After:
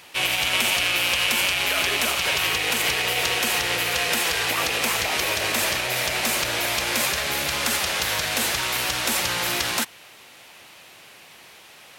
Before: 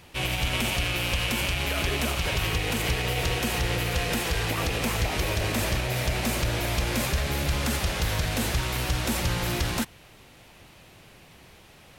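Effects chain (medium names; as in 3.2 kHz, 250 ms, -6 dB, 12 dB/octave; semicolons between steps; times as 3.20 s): high-pass 970 Hz 6 dB/octave; trim +8 dB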